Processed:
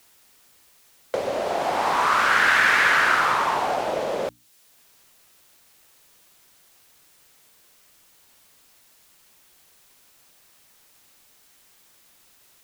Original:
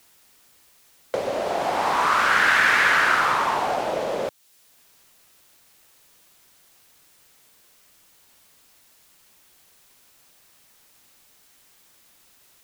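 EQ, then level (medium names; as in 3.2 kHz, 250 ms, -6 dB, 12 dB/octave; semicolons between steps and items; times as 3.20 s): hum notches 60/120/180/240/300 Hz; 0.0 dB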